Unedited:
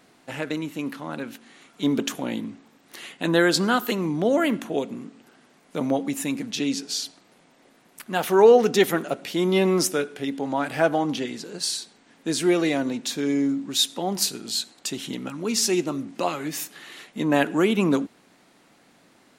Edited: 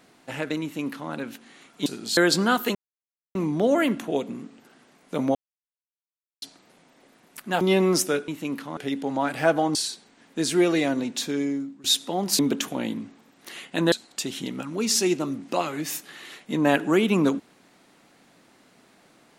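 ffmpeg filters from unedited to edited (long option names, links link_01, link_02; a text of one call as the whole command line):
ffmpeg -i in.wav -filter_complex "[0:a]asplit=13[link_01][link_02][link_03][link_04][link_05][link_06][link_07][link_08][link_09][link_10][link_11][link_12][link_13];[link_01]atrim=end=1.862[link_14];[link_02]atrim=start=14.278:end=14.592[link_15];[link_03]atrim=start=3.388:end=3.97,asetpts=PTS-STARTPTS,afade=type=out:start_time=0.578:duration=0.004:curve=hsin,apad=pad_dur=0.6[link_16];[link_04]atrim=start=3.97:end=5.97,asetpts=PTS-STARTPTS,afade=type=in:duration=0.004:curve=hsin,afade=type=out:start_time=1.996:duration=0.004:curve=hsin[link_17];[link_05]atrim=start=5.97:end=7.04,asetpts=PTS-STARTPTS,volume=0[link_18];[link_06]atrim=start=7.04:end=8.232,asetpts=PTS-STARTPTS,afade=type=in:duration=0.004:curve=hsin[link_19];[link_07]atrim=start=9.458:end=10.132[link_20];[link_08]atrim=start=0.618:end=1.112[link_21];[link_09]atrim=start=10.128:end=11.112[link_22];[link_10]atrim=start=11.638:end=13.73,asetpts=PTS-STARTPTS,afade=type=out:start_time=1.492:duration=0.6:silence=0.105925[link_23];[link_11]atrim=start=13.73:end=14.282,asetpts=PTS-STARTPTS,afade=type=in:duration=0.004:curve=hsin:silence=0.105925[link_24];[link_12]atrim=start=1.858:end=3.392[link_25];[link_13]atrim=start=14.588[link_26];[link_14][link_15]acrossfade=duration=0.004:curve1=hsin:curve2=hsin[link_27];[link_16][link_17][link_18][link_19]concat=n=4:v=0:a=1[link_28];[link_27][link_28]acrossfade=duration=0.004:curve1=hsin:curve2=hsin[link_29];[link_29][link_20]acrossfade=duration=0.004:curve1=hsin:curve2=hsin[link_30];[link_30][link_21]acrossfade=duration=0.004:curve1=hsin:curve2=hsin[link_31];[link_31][link_22]acrossfade=duration=0.004:curve1=hsin:curve2=hsin[link_32];[link_23][link_24]concat=n=2:v=0:a=1[link_33];[link_32][link_33]acrossfade=duration=0.004:curve1=hsin:curve2=hsin[link_34];[link_34][link_25]acrossfade=duration=0.004:curve1=hsin:curve2=hsin[link_35];[link_35][link_26]acrossfade=duration=0.004:curve1=hsin:curve2=hsin" out.wav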